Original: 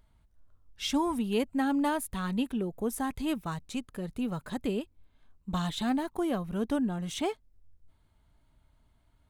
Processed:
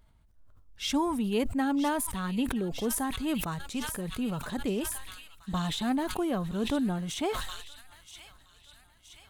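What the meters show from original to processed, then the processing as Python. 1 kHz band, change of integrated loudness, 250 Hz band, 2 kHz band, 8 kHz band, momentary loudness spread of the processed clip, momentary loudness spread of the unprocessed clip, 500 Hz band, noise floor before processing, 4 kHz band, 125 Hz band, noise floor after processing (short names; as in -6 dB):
+1.0 dB, +1.0 dB, +0.5 dB, +2.0 dB, +6.5 dB, 16 LU, 8 LU, +0.5 dB, -67 dBFS, +3.0 dB, +1.5 dB, -61 dBFS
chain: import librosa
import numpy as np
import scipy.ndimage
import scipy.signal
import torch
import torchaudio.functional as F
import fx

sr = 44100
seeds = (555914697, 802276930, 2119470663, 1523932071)

p1 = x + fx.echo_wet_highpass(x, sr, ms=972, feedback_pct=61, hz=2300.0, wet_db=-10, dry=0)
y = fx.sustainer(p1, sr, db_per_s=42.0)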